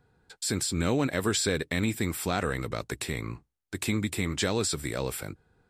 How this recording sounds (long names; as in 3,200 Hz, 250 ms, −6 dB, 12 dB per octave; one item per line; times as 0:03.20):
background noise floor −76 dBFS
spectral slope −4.0 dB per octave